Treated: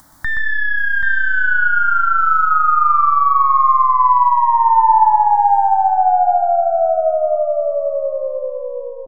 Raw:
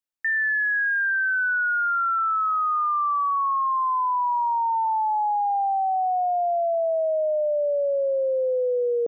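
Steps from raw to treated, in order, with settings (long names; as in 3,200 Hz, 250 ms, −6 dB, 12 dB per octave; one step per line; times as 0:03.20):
stylus tracing distortion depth 0.032 ms
tilt shelving filter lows +8 dB, about 1,400 Hz
in parallel at −3 dB: brickwall limiter −20 dBFS, peak gain reduction 6.5 dB
on the sum: upward compression, threshold −20 dBFS
phaser with its sweep stopped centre 1,100 Hz, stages 4
multi-tap delay 123/782 ms −6.5/−8 dB
feedback delay network reverb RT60 1.7 s, high-frequency decay 0.35×, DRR 13 dB
level +3.5 dB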